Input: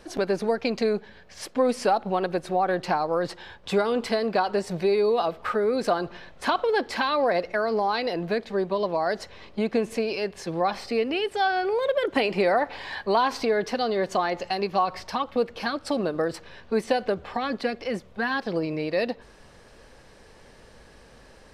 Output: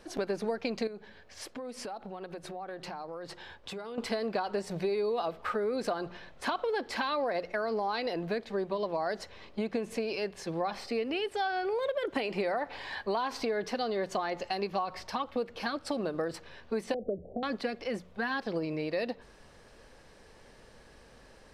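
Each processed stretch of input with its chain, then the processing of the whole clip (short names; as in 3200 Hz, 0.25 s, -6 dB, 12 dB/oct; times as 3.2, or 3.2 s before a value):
0.87–3.98 notches 50/100/150 Hz + compressor, threshold -33 dBFS
16.94–17.43 steep low-pass 660 Hz 72 dB/oct + three-band squash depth 70%
whole clip: notches 60/120/180 Hz; compressor, threshold -23 dBFS; gain -4.5 dB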